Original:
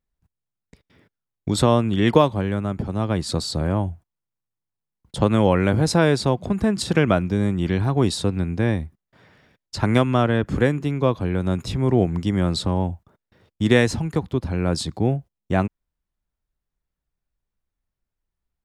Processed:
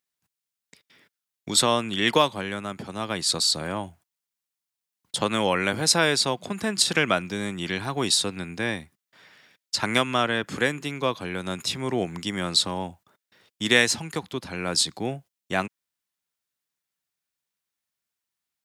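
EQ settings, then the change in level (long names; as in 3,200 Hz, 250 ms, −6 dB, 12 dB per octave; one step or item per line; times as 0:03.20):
high-pass filter 160 Hz 12 dB per octave
tilt shelving filter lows −8.5 dB, about 1,200 Hz
0.0 dB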